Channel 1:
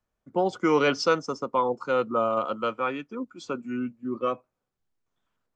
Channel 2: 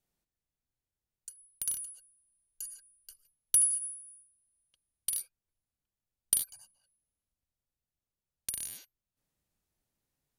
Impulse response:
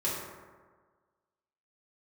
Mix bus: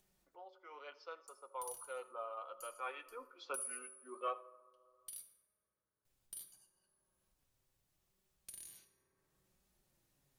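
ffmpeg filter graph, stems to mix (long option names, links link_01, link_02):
-filter_complex "[0:a]highpass=frequency=520:width=0.5412,highpass=frequency=520:width=1.3066,lowpass=frequency=4500:width=0.5412,lowpass=frequency=4500:width=1.3066,volume=-4.5dB,afade=type=in:start_time=0.97:duration=0.76:silence=0.398107,afade=type=in:start_time=2.71:duration=0.39:silence=0.266073,afade=type=out:start_time=4.13:duration=0.41:silence=0.398107,asplit=3[link_01][link_02][link_03];[link_02]volume=-21.5dB[link_04];[link_03]volume=-21dB[link_05];[1:a]alimiter=limit=-20dB:level=0:latency=1:release=137,volume=-12.5dB,asplit=3[link_06][link_07][link_08];[link_06]atrim=end=5.22,asetpts=PTS-STARTPTS,afade=type=out:start_time=5.216:duration=0.004:curve=hsin[link_09];[link_07]atrim=start=5.22:end=6.05,asetpts=PTS-STARTPTS,volume=0[link_10];[link_08]atrim=start=6.05,asetpts=PTS-STARTPTS,afade=type=in:duration=0.004:curve=hsin[link_11];[link_09][link_10][link_11]concat=n=3:v=0:a=1,asplit=2[link_12][link_13];[link_13]volume=-9dB[link_14];[2:a]atrim=start_sample=2205[link_15];[link_04][link_14]amix=inputs=2:normalize=0[link_16];[link_16][link_15]afir=irnorm=-1:irlink=0[link_17];[link_05]aecho=0:1:82:1[link_18];[link_01][link_12][link_17][link_18]amix=inputs=4:normalize=0,acompressor=mode=upward:threshold=-57dB:ratio=2.5,flanger=delay=4.7:depth=3.2:regen=-40:speed=0.72:shape=triangular"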